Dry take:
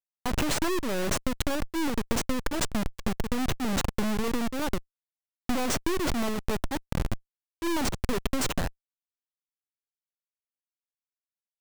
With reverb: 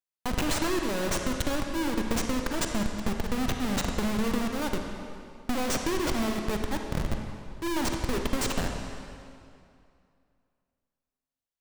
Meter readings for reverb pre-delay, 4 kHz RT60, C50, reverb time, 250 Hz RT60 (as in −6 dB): 36 ms, 2.0 s, 3.5 dB, 2.5 s, 2.5 s